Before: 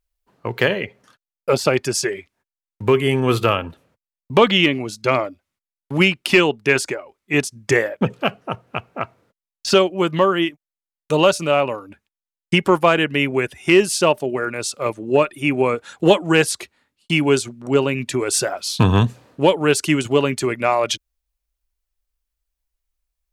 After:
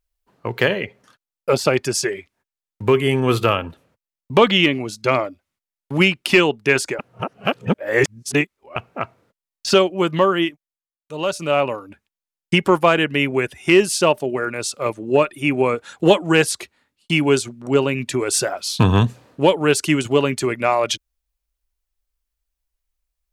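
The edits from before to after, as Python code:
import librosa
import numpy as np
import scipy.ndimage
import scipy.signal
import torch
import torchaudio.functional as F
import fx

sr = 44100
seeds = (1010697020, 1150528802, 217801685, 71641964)

y = fx.edit(x, sr, fx.reverse_span(start_s=6.99, length_s=1.77),
    fx.fade_down_up(start_s=10.46, length_s=1.15, db=-14.5, fade_s=0.48), tone=tone)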